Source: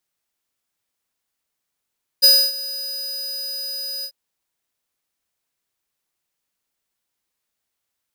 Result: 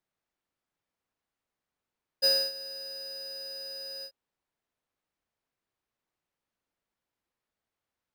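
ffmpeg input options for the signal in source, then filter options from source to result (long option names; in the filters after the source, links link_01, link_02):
-f lavfi -i "aevalsrc='0.316*(2*lt(mod(4960*t,1),0.5)-1)':duration=1.892:sample_rate=44100,afade=type=in:duration=0.022,afade=type=out:start_time=0.022:duration=0.274:silence=0.119,afade=type=out:start_time=1.82:duration=0.072"
-af "lowpass=frequency=1300:poles=1"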